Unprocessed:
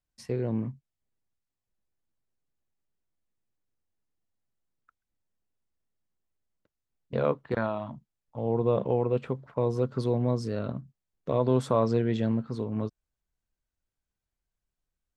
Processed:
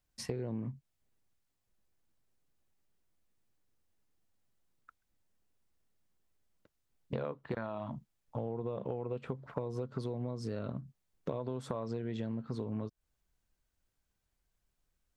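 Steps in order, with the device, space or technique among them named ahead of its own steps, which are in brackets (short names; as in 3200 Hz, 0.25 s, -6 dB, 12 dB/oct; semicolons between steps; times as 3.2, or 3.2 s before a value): serial compression, leveller first (compressor 3:1, threshold -27 dBFS, peak gain reduction 7 dB; compressor 6:1, threshold -40 dBFS, peak gain reduction 14.5 dB); gain +5.5 dB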